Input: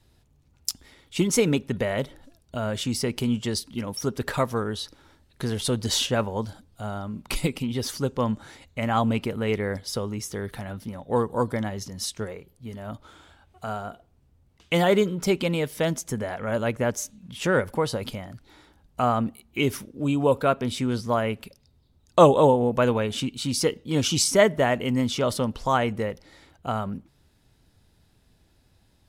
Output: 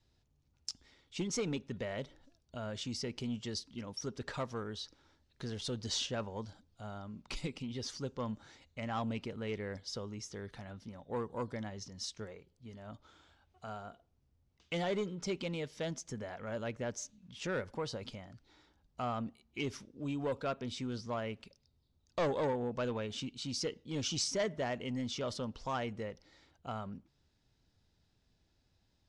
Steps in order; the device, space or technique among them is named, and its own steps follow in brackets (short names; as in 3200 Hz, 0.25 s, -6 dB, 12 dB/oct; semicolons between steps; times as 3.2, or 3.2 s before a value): overdriven synthesiser ladder filter (soft clip -15 dBFS, distortion -13 dB; ladder low-pass 7200 Hz, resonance 35%); gain -5 dB